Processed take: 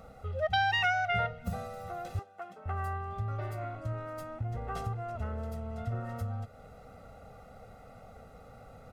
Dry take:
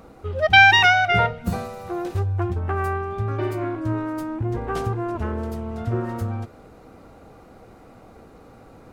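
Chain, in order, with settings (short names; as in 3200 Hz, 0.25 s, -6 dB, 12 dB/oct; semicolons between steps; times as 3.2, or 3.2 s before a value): comb 1.5 ms, depth 86%; compressor 1.5:1, threshold -35 dBFS, peak gain reduction 10 dB; 2.19–2.66 Bessel high-pass 330 Hz, order 8; gain -7 dB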